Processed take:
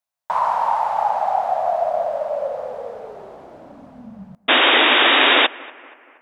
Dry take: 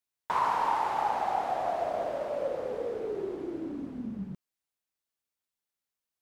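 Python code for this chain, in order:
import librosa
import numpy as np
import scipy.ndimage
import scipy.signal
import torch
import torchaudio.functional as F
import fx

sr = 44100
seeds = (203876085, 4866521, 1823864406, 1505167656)

y = fx.curve_eq(x, sr, hz=(230.0, 340.0, 620.0, 2100.0), db=(0, -15, 13, 2))
y = fx.spec_paint(y, sr, seeds[0], shape='noise', start_s=4.48, length_s=0.99, low_hz=240.0, high_hz=3800.0, level_db=-13.0)
y = fx.echo_bbd(y, sr, ms=237, stages=4096, feedback_pct=49, wet_db=-22)
y = y * 10.0 ** (-1.0 / 20.0)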